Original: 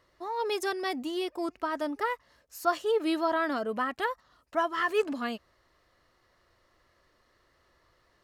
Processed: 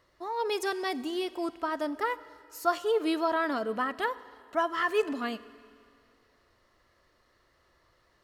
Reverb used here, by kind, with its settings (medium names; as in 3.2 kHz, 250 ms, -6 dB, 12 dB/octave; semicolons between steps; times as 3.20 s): Schroeder reverb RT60 2.3 s, combs from 32 ms, DRR 16.5 dB